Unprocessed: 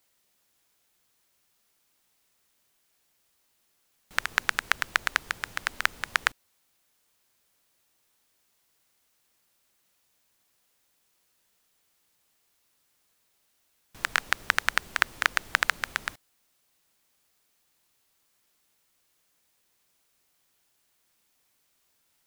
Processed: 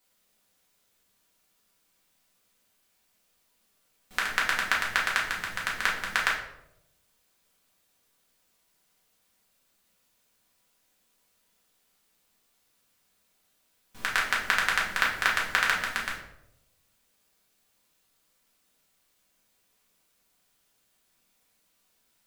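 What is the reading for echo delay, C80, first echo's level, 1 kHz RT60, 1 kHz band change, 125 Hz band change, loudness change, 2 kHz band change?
none, 9.0 dB, none, 0.70 s, +1.5 dB, +2.5 dB, +1.0 dB, +1.0 dB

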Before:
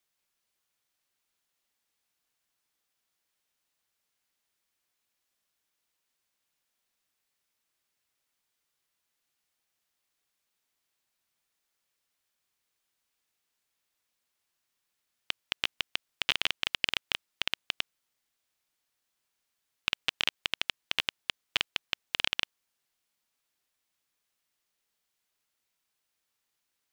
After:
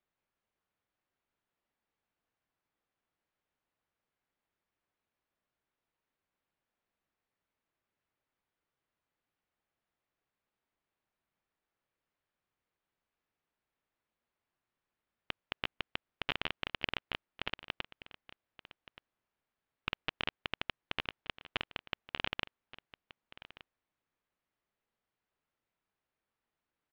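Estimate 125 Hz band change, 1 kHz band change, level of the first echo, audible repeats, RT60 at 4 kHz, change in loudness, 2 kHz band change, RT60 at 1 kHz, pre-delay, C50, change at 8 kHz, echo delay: +3.0 dB, -1.0 dB, -17.0 dB, 1, none, -7.5 dB, -6.0 dB, none, none, none, under -20 dB, 1.176 s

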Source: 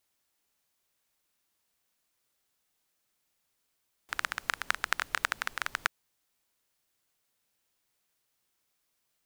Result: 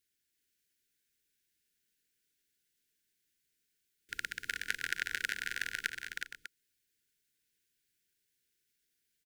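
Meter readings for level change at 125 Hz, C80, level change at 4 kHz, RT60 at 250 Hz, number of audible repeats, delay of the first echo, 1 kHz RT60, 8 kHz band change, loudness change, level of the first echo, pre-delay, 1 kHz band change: -2.5 dB, none, -2.5 dB, none, 5, 0.186 s, none, -2.5 dB, -4.0 dB, -13.0 dB, none, -13.0 dB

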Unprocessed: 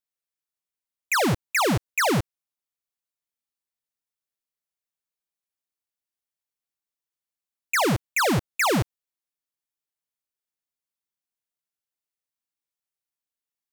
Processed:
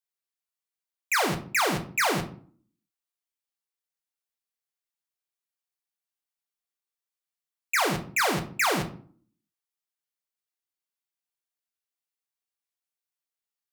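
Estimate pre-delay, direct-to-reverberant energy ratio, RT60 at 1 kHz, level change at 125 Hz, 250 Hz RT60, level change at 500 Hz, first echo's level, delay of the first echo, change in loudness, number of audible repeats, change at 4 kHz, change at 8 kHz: 3 ms, 4.5 dB, 0.45 s, -8.0 dB, 0.70 s, -4.5 dB, none, none, -2.5 dB, none, -1.0 dB, -1.5 dB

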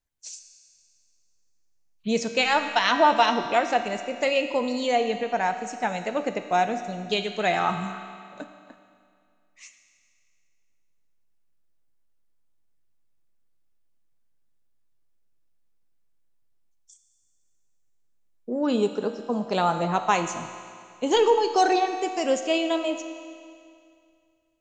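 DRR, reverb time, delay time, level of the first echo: 6.5 dB, 2.3 s, none, none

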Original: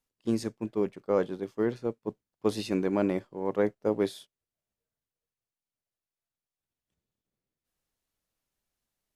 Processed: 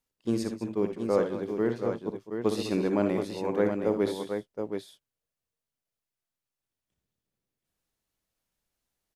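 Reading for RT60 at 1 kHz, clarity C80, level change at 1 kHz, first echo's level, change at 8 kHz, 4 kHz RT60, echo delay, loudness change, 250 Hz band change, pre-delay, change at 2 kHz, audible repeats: none, none, +1.5 dB, -8.5 dB, +1.5 dB, none, 59 ms, +1.0 dB, +1.5 dB, none, +1.5 dB, 3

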